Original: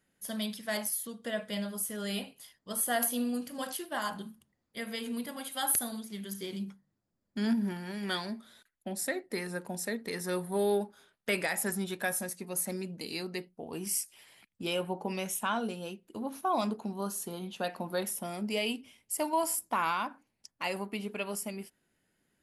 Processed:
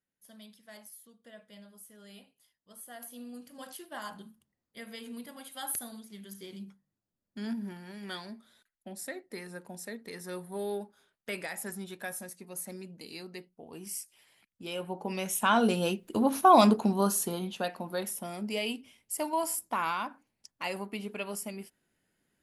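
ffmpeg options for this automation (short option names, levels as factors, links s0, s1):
-af "volume=3.55,afade=t=in:st=3:d=0.9:silence=0.298538,afade=t=in:st=14.65:d=0.67:silence=0.375837,afade=t=in:st=15.32:d=0.45:silence=0.354813,afade=t=out:st=16.73:d=1.01:silence=0.251189"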